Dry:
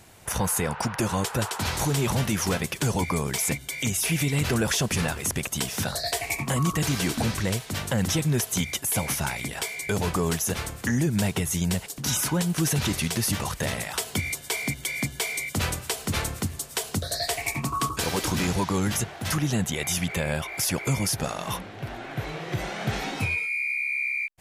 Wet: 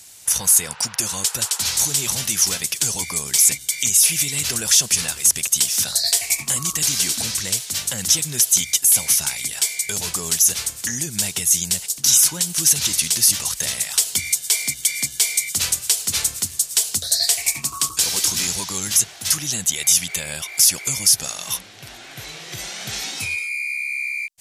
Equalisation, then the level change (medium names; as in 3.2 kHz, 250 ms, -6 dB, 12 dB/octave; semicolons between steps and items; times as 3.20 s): treble shelf 2.3 kHz +9.5 dB; peaking EQ 6.2 kHz +12.5 dB 2.4 oct; treble shelf 8.6 kHz +7 dB; -9.0 dB